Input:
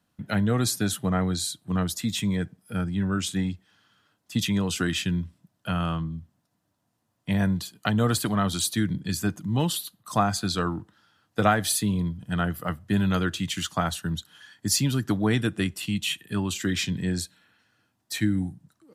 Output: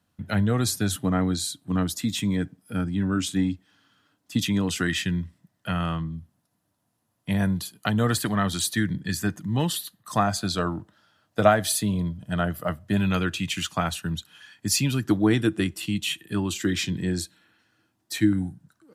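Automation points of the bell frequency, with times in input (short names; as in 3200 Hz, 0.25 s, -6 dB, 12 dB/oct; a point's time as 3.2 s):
bell +9.5 dB 0.23 oct
90 Hz
from 0.96 s 280 Hz
from 4.69 s 1900 Hz
from 6.15 s 11000 Hz
from 8 s 1800 Hz
from 10.27 s 620 Hz
from 12.97 s 2500 Hz
from 15.05 s 330 Hz
from 18.33 s 1500 Hz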